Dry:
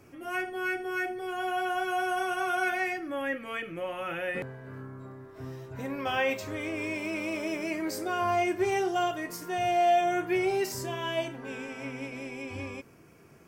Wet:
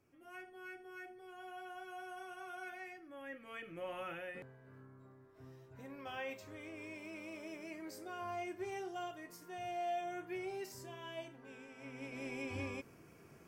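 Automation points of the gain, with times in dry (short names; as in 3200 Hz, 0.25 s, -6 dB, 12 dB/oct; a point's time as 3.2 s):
3.09 s -19 dB
3.97 s -7.5 dB
4.37 s -15.5 dB
11.73 s -15.5 dB
12.3 s -4 dB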